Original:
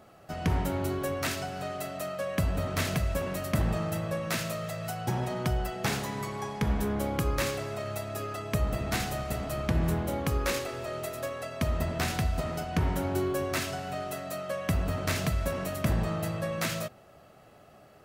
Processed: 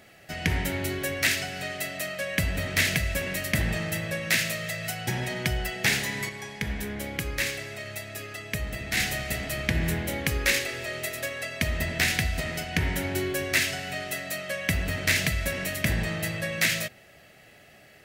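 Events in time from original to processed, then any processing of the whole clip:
0:06.29–0:08.97: clip gain −4.5 dB
whole clip: high shelf with overshoot 1,500 Hz +7.5 dB, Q 3

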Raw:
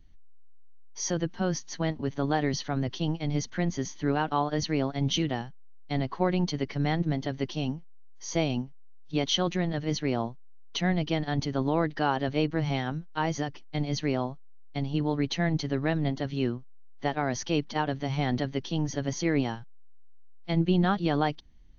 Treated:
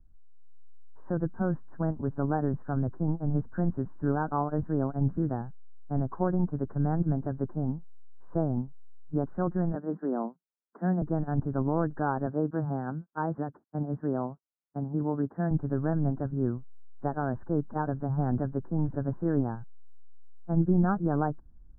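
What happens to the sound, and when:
0:09.75–0:11.02: Butterworth high-pass 170 Hz 72 dB per octave
0:12.26–0:15.51: high-pass filter 160 Hz
whole clip: Butterworth low-pass 1,600 Hz 96 dB per octave; low-shelf EQ 180 Hz +7.5 dB; automatic gain control gain up to 6 dB; level −9 dB

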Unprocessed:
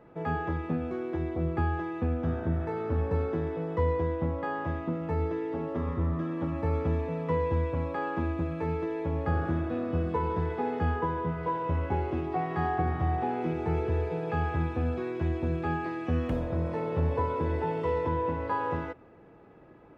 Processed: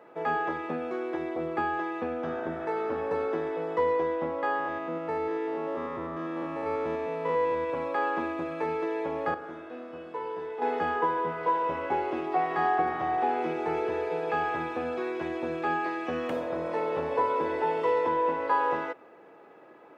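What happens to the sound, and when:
0:04.59–0:07.70: spectrum averaged block by block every 100 ms
0:09.34–0:10.62: tuned comb filter 63 Hz, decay 0.76 s, mix 80%
whole clip: high-pass filter 430 Hz 12 dB per octave; level +5.5 dB

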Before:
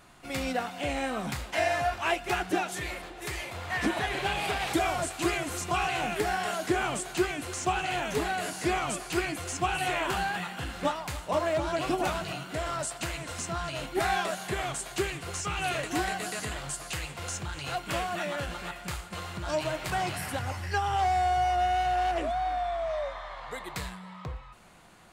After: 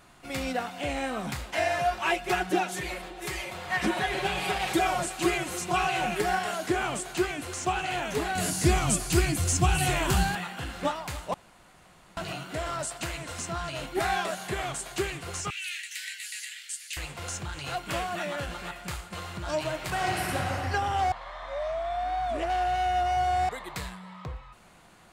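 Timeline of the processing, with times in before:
0:01.78–0:06.39: comb filter 5.4 ms, depth 61%
0:08.35–0:10.35: bass and treble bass +15 dB, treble +10 dB
0:11.34–0:12.17: fill with room tone
0:15.50–0:16.97: Butterworth high-pass 1,800 Hz 48 dB per octave
0:19.88–0:20.51: thrown reverb, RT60 2.8 s, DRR −2 dB
0:21.12–0:23.49: reverse

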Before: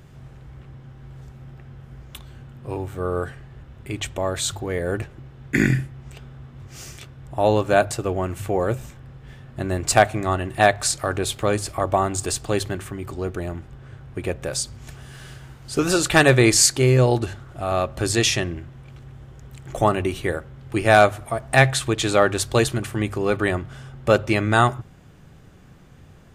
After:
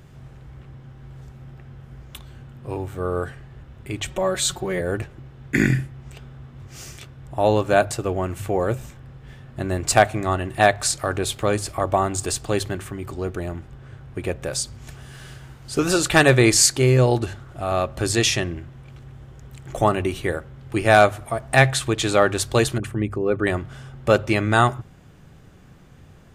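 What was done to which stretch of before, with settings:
0:04.07–0:04.81: comb filter 5.4 ms, depth 91%
0:22.78–0:23.47: spectral envelope exaggerated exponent 1.5

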